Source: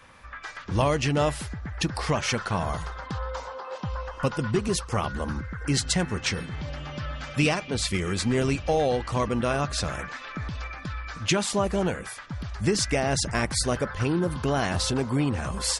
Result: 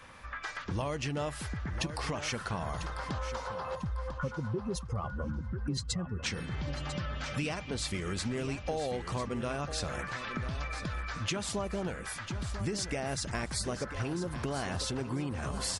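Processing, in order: 3.75–6.23 spectral contrast raised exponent 1.9; compressor 4:1, threshold -33 dBFS, peak gain reduction 12.5 dB; feedback echo 0.996 s, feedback 28%, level -11 dB

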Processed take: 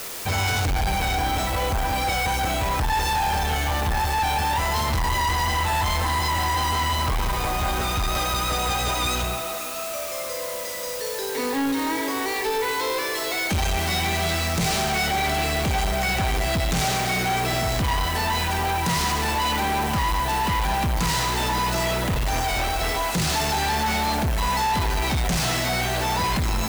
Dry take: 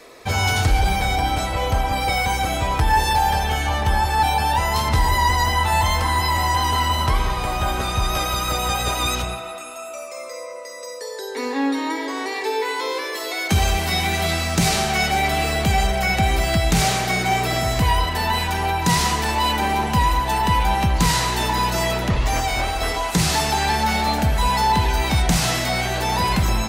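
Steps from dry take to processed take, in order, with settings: median filter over 3 samples; requantised 6-bit, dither triangular; soft clip -22.5 dBFS, distortion -9 dB; gain +2.5 dB

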